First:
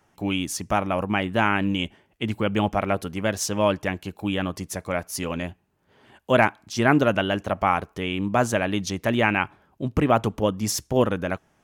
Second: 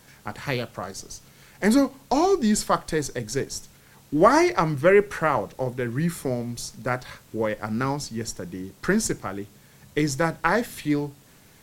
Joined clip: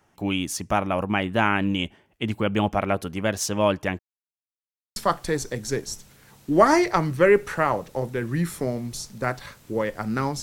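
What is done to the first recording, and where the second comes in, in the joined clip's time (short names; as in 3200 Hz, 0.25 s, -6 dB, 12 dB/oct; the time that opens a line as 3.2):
first
3.99–4.96 mute
4.96 switch to second from 2.6 s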